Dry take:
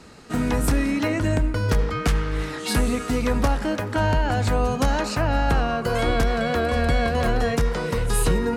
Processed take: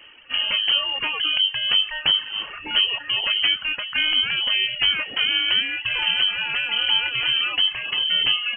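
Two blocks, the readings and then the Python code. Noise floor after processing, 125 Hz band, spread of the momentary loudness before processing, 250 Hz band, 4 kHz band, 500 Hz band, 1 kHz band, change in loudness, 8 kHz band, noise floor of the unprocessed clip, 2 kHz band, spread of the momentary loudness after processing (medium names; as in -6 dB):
-38 dBFS, under -25 dB, 3 LU, -22.0 dB, +18.5 dB, -19.5 dB, -9.5 dB, +3.5 dB, under -40 dB, -32 dBFS, +5.5 dB, 4 LU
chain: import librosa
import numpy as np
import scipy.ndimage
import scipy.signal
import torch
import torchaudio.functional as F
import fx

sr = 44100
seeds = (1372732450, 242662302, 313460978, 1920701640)

y = fx.dereverb_blind(x, sr, rt60_s=1.1)
y = fx.freq_invert(y, sr, carrier_hz=3100)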